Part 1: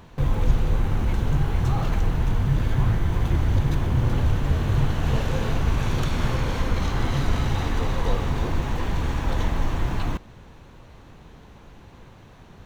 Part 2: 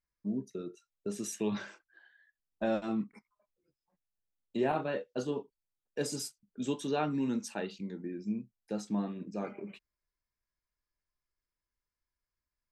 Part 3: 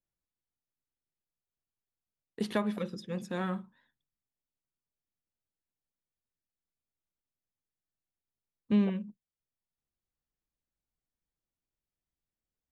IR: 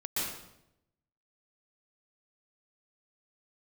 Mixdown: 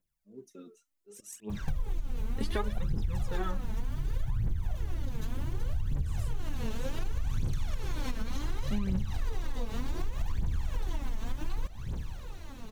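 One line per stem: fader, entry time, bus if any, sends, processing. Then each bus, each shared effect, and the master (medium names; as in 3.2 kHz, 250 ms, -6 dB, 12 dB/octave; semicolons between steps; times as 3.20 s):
-5.5 dB, 1.50 s, bus A, no send, bass shelf 210 Hz +8 dB
-9.5 dB, 0.00 s, bus A, no send, peaking EQ 4.2 kHz -9 dB 0.57 oct; slow attack 177 ms
0.0 dB, 0.00 s, no bus, no send, none
bus A: 0.0 dB, treble shelf 4.3 kHz +11.5 dB; compression, threshold -29 dBFS, peak gain reduction 17 dB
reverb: none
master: phaser 0.67 Hz, delay 4.7 ms, feedback 74%; compression, threshold -26 dBFS, peak gain reduction 10.5 dB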